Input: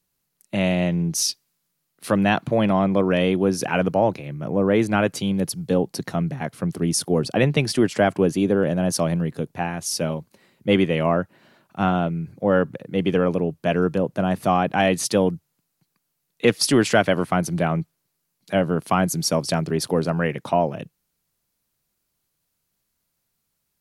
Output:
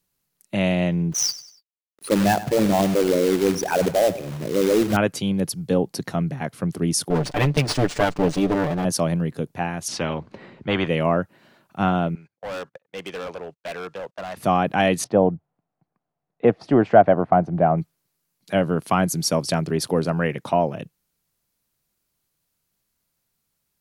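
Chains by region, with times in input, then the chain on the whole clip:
1.12–4.97 s: resonances exaggerated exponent 3 + companded quantiser 4-bit + feedback delay 96 ms, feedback 39%, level -15.5 dB
7.10–8.85 s: comb filter that takes the minimum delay 6.8 ms + treble shelf 5.9 kHz +9 dB + decimation joined by straight lines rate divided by 3×
9.88–10.88 s: tape spacing loss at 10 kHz 33 dB + spectrum-flattening compressor 2:1
12.15–14.37 s: gate -34 dBFS, range -28 dB + three-band isolator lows -20 dB, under 550 Hz, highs -22 dB, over 7.8 kHz + overload inside the chain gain 28.5 dB
15.04–17.78 s: low-pass 1.2 kHz + peaking EQ 710 Hz +10 dB 0.49 oct
whole clip: none

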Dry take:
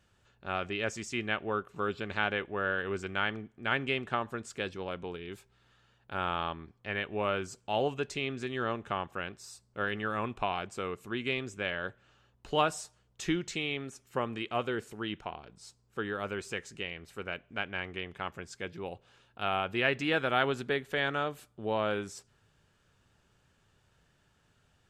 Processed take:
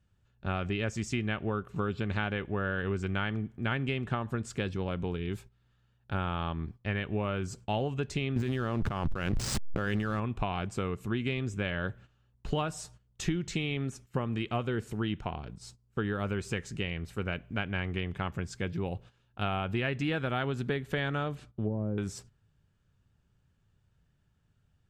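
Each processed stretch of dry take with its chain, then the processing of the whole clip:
8.36–10.20 s: hysteresis with a dead band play -42.5 dBFS + level flattener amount 100%
21.35–21.98 s: low-pass that closes with the level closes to 380 Hz, closed at -30 dBFS + distance through air 84 m
whole clip: gate -56 dBFS, range -14 dB; tone controls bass +13 dB, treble -1 dB; compression, threshold -30 dBFS; trim +3 dB

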